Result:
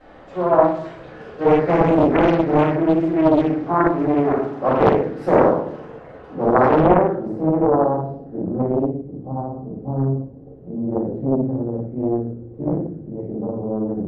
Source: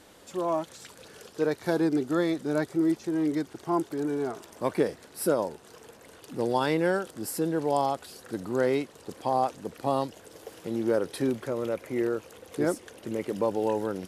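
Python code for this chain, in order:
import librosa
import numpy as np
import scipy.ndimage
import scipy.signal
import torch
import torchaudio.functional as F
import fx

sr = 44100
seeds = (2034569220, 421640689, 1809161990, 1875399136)

y = fx.highpass(x, sr, hz=97.0, slope=12, at=(4.04, 4.8))
y = fx.room_flutter(y, sr, wall_m=10.3, rt60_s=0.35)
y = fx.room_shoebox(y, sr, seeds[0], volume_m3=140.0, walls='mixed', distance_m=5.4)
y = fx.filter_sweep_lowpass(y, sr, from_hz=1700.0, to_hz=230.0, start_s=5.76, end_s=9.01, q=0.89)
y = fx.doppler_dist(y, sr, depth_ms=0.91)
y = y * 10.0 ** (-5.0 / 20.0)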